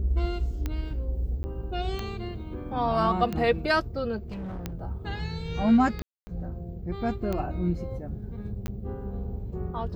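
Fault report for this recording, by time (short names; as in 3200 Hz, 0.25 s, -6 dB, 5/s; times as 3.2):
tick 45 rpm -17 dBFS
1.43–1.44 gap 10 ms
4.18–4.74 clipped -32.5 dBFS
6.02–6.27 gap 0.25 s
8.67–8.68 gap 10 ms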